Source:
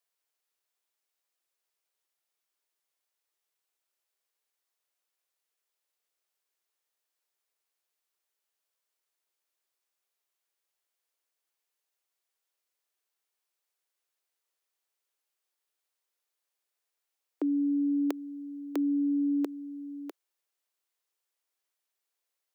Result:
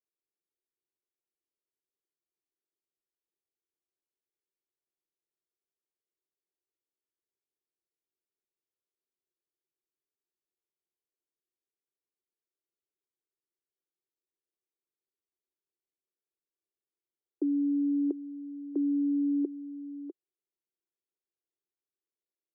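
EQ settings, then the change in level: synth low-pass 360 Hz, resonance Q 3.5; -7.5 dB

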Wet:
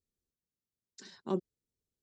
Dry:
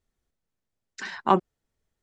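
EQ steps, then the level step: HPF 68 Hz 6 dB/oct; band shelf 1400 Hz -15.5 dB 2.4 oct; -8.0 dB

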